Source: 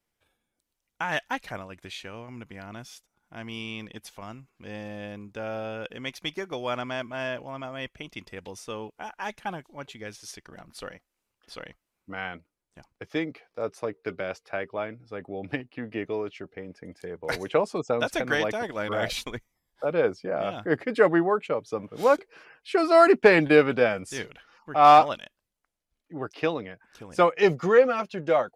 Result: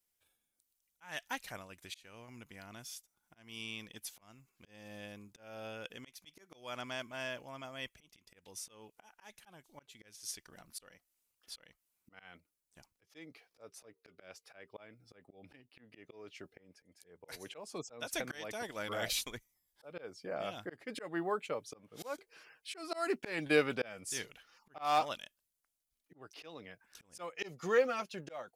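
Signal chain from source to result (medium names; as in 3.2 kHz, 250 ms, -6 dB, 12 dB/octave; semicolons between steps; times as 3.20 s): slow attack 296 ms; pre-emphasis filter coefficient 0.8; trim +2.5 dB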